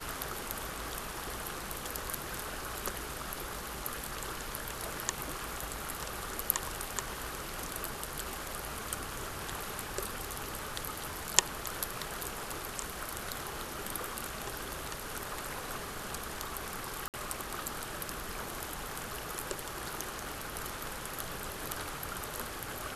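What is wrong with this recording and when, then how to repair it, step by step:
17.08–17.14 gap 58 ms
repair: interpolate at 17.08, 58 ms

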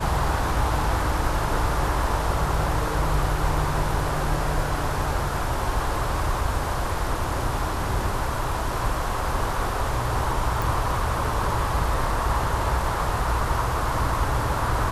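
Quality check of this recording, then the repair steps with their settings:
10.62 pop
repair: de-click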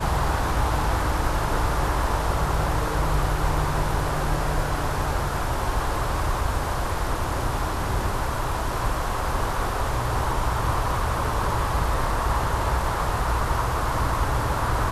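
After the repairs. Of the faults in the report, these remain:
none

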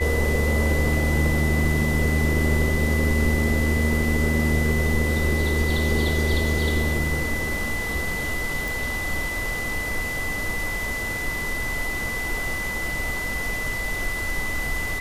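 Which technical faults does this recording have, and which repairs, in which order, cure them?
tone 2000 Hz -27 dBFS
8.68 pop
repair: de-click; notch 2000 Hz, Q 30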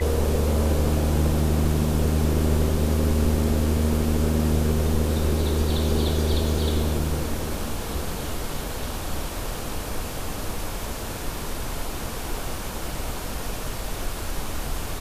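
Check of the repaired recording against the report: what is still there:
none

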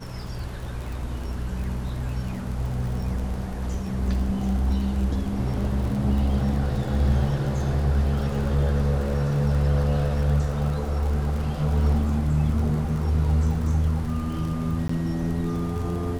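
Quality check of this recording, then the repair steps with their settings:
crackle 39/s -31 dBFS
14.88–14.89 gap 14 ms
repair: de-click; interpolate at 14.88, 14 ms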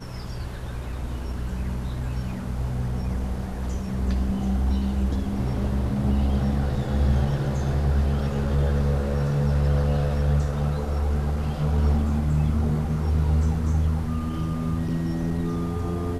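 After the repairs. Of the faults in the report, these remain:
none

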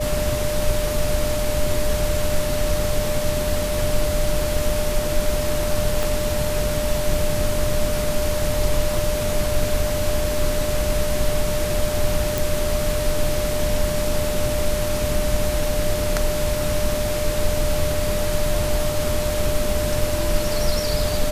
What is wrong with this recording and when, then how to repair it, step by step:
tone 600 Hz -24 dBFS
6.03 pop
12.38 pop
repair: de-click; notch 600 Hz, Q 30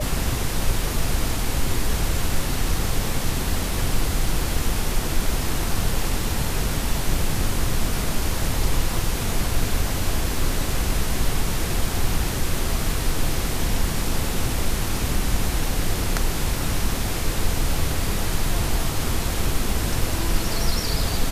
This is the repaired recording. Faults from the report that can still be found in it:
6.03 pop

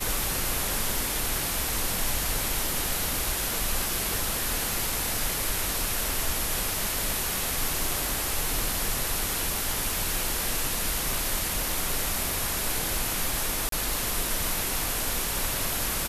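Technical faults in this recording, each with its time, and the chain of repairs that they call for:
4.73 pop
13.69–13.72 gap 33 ms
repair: de-click; interpolate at 13.69, 33 ms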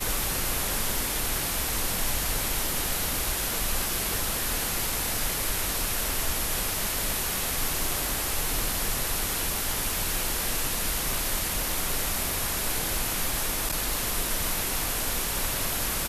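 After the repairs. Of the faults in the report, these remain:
none

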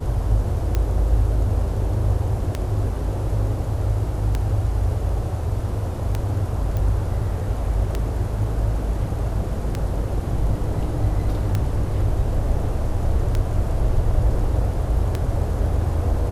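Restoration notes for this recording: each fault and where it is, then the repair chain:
tick 33 1/3 rpm -10 dBFS
6.77 pop -15 dBFS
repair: de-click

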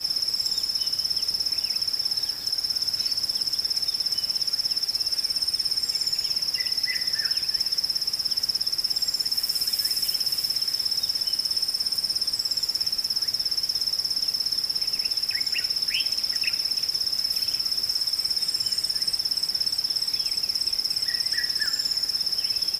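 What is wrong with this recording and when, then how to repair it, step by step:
16.18 gap 2.8 ms
21.66 pop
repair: de-click; interpolate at 16.18, 2.8 ms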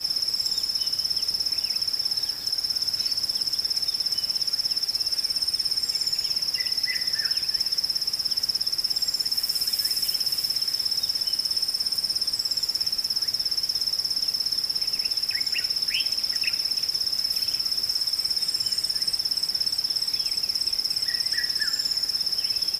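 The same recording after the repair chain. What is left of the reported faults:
none

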